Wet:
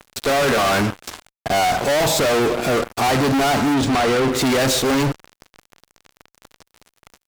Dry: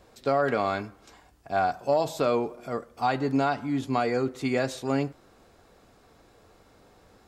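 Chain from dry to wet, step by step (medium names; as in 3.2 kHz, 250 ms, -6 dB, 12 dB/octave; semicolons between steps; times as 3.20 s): fuzz box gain 47 dB, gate -49 dBFS; 3.74–4.32 s: decimation joined by straight lines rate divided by 3×; trim -3 dB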